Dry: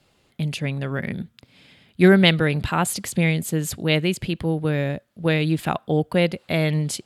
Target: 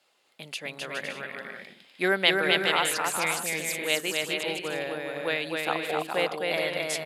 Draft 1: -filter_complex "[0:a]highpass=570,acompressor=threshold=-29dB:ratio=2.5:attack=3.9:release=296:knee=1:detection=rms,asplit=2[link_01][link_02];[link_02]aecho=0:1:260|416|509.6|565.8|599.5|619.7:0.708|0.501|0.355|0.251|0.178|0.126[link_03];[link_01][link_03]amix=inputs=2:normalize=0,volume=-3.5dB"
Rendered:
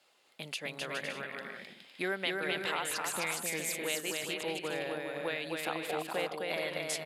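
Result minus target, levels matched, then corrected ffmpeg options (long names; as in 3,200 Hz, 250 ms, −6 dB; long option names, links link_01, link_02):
downward compressor: peak gain reduction +14.5 dB
-filter_complex "[0:a]highpass=570,asplit=2[link_01][link_02];[link_02]aecho=0:1:260|416|509.6|565.8|599.5|619.7:0.708|0.501|0.355|0.251|0.178|0.126[link_03];[link_01][link_03]amix=inputs=2:normalize=0,volume=-3.5dB"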